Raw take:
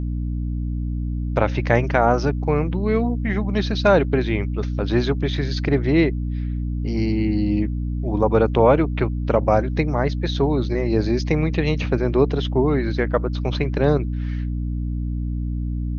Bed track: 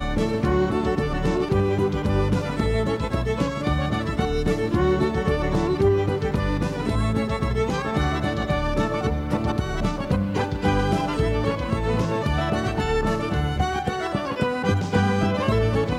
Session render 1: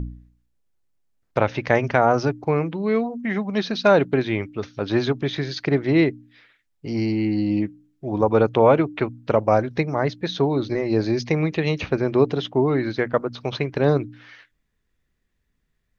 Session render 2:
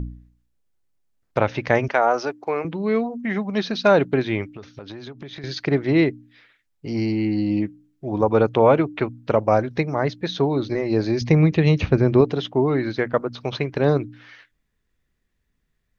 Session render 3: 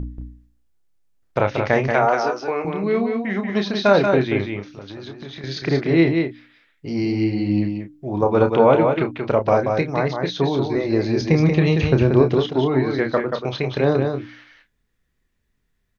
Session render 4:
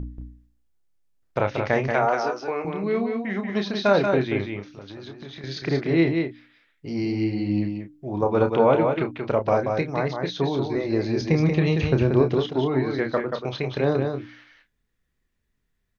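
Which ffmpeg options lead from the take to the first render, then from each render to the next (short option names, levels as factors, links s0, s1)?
-af "bandreject=f=60:t=h:w=4,bandreject=f=120:t=h:w=4,bandreject=f=180:t=h:w=4,bandreject=f=240:t=h:w=4,bandreject=f=300:t=h:w=4"
-filter_complex "[0:a]asettb=1/sr,asplit=3[s0][s1][s2];[s0]atrim=end=1.884[s3];[s1]atrim=start=1.88:end=2.65,asetpts=PTS-STARTPTS,afade=t=in:d=0.004:c=qsin,afade=t=out:st=0.766:d=0.004:c=qsin,highpass=420[s4];[s2]atrim=start=2.646[s5];[s3][s4]acrossfade=d=0.004:c1=hsin:c2=qsin[s6];[s6][s5]acrossfade=d=0.004:c1=qsin:c2=hsin,asettb=1/sr,asplit=3[s7][s8][s9];[s7]atrim=end=4.444[s10];[s8]atrim=start=4.44:end=5.44,asetpts=PTS-STARTPTS,afade=t=in:d=0.004:c=qsin,afade=t=out:st=0.996:d=0.004:c=qsin,acompressor=threshold=0.0251:ratio=20:attack=3.2:release=140:knee=1:detection=peak[s11];[s9]atrim=start=5.436[s12];[s10][s11]acrossfade=d=0.004:c1=hsin:c2=qsin[s13];[s13][s12]acrossfade=d=0.004:c1=qsin:c2=hsin,asettb=1/sr,asplit=3[s14][s15][s16];[s14]atrim=end=11.214[s17];[s15]atrim=start=11.21:end=12.21,asetpts=PTS-STARTPTS,afade=t=in:d=0.004:c=qsin,afade=t=out:st=0.996:d=0.004:c=qsin,equalizer=f=66:w=0.33:g=11.5[s18];[s16]atrim=start=12.206[s19];[s17][s18]acrossfade=d=0.004:c1=hsin:c2=qsin[s20];[s20][s19]acrossfade=d=0.004:c1=qsin:c2=hsin"
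-filter_complex "[0:a]asplit=2[s0][s1];[s1]adelay=30,volume=0.422[s2];[s0][s2]amix=inputs=2:normalize=0,asplit=2[s3][s4];[s4]aecho=0:1:183:0.562[s5];[s3][s5]amix=inputs=2:normalize=0"
-af "volume=0.631"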